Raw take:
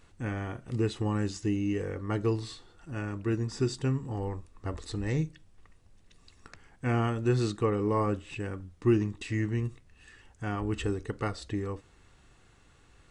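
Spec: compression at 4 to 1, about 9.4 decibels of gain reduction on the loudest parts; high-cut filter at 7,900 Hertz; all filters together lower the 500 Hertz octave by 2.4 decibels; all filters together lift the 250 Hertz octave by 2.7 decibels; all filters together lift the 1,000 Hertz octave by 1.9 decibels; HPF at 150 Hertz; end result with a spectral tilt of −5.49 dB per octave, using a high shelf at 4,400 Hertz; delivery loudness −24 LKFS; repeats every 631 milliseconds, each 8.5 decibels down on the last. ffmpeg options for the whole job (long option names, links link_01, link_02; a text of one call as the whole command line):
ffmpeg -i in.wav -af "highpass=150,lowpass=7900,equalizer=frequency=250:width_type=o:gain=7,equalizer=frequency=500:width_type=o:gain=-8,equalizer=frequency=1000:width_type=o:gain=3.5,highshelf=frequency=4400:gain=8.5,acompressor=threshold=-29dB:ratio=4,aecho=1:1:631|1262|1893|2524:0.376|0.143|0.0543|0.0206,volume=11.5dB" out.wav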